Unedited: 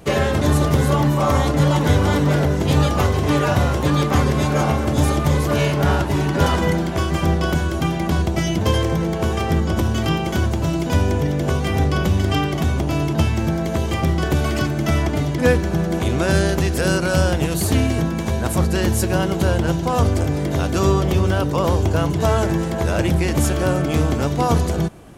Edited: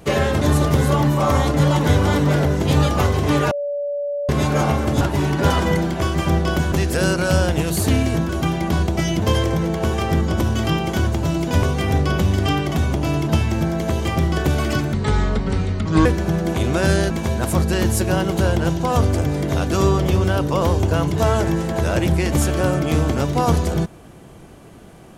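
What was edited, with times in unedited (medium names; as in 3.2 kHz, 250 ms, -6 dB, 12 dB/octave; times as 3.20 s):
3.51–4.29 s: bleep 575 Hz -21 dBFS
5.01–5.97 s: delete
11.02–11.49 s: delete
14.79–15.51 s: speed 64%
16.56–18.13 s: move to 7.68 s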